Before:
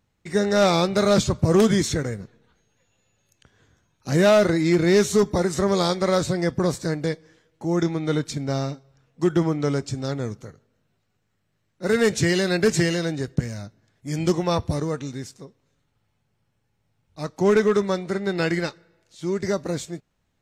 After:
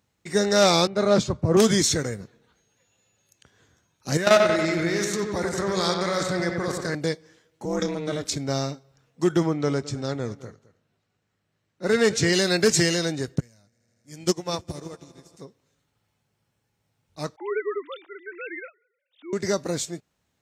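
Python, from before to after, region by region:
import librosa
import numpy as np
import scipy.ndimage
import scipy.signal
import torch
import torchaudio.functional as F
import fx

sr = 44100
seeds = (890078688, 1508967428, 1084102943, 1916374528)

y = fx.chain(x, sr, fx.lowpass(hz=1500.0, slope=6),
    fx.band_widen(depth_pct=70), at=(0.87, 1.57))
y = fx.chain(y, sr, fx.peak_eq(hz=1700.0, db=7.0, octaves=1.2),
    fx.level_steps(step_db=13),
    fx.echo_wet_lowpass(ms=93, feedback_pct=61, hz=3600.0, wet_db=-4.5), at=(4.17, 6.95))
y = fx.chain(y, sr, fx.transient(attack_db=-1, sustain_db=6),
    fx.ring_mod(carrier_hz=150.0), at=(7.65, 8.36))
y = fx.chain(y, sr, fx.high_shelf(hz=7100.0, db=-11.5),
    fx.echo_single(ms=212, db=-18.0), at=(9.46, 12.33))
y = fx.chain(y, sr, fx.high_shelf(hz=4000.0, db=4.0),
    fx.echo_swell(ms=80, loudest=5, wet_db=-18),
    fx.upward_expand(threshold_db=-31.0, expansion=2.5), at=(13.4, 15.37))
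y = fx.chain(y, sr, fx.sine_speech(),
    fx.highpass(hz=1500.0, slope=6), at=(17.36, 19.33))
y = fx.dynamic_eq(y, sr, hz=5400.0, q=0.98, threshold_db=-39.0, ratio=4.0, max_db=4)
y = scipy.signal.sosfilt(scipy.signal.butter(2, 55.0, 'highpass', fs=sr, output='sos'), y)
y = fx.bass_treble(y, sr, bass_db=-3, treble_db=4)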